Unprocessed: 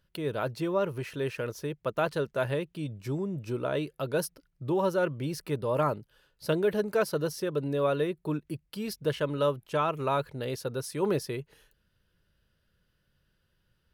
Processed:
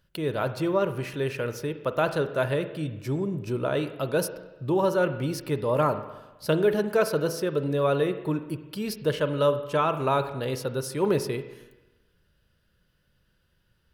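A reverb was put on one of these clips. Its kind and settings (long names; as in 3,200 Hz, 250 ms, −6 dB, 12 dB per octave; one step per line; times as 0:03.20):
spring reverb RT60 1.1 s, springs 38/50 ms, chirp 50 ms, DRR 10 dB
level +3.5 dB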